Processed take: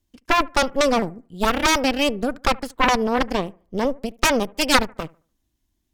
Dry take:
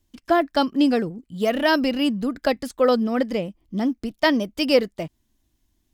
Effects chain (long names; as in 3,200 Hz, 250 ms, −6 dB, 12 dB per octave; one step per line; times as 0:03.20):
harmonic generator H 3 −6 dB, 6 −10 dB, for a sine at −5.5 dBFS
bucket-brigade delay 73 ms, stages 1,024, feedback 30%, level −23 dB
level +2 dB